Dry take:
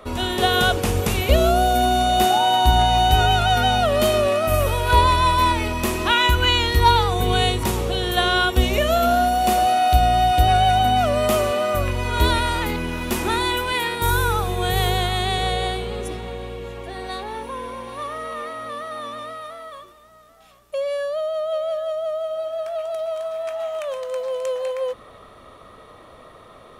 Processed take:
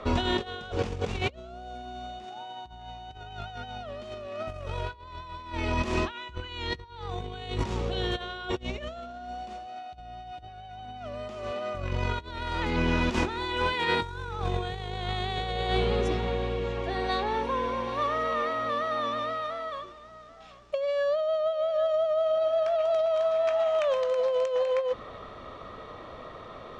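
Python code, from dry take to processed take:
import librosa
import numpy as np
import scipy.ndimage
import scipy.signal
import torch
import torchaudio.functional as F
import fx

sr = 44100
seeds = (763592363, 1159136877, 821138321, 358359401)

y = scipy.signal.sosfilt(scipy.signal.butter(4, 6300.0, 'lowpass', fs=sr, output='sos'), x)
y = fx.high_shelf(y, sr, hz=3800.0, db=-3.5)
y = fx.over_compress(y, sr, threshold_db=-26.0, ratio=-0.5)
y = y * 10.0 ** (-3.5 / 20.0)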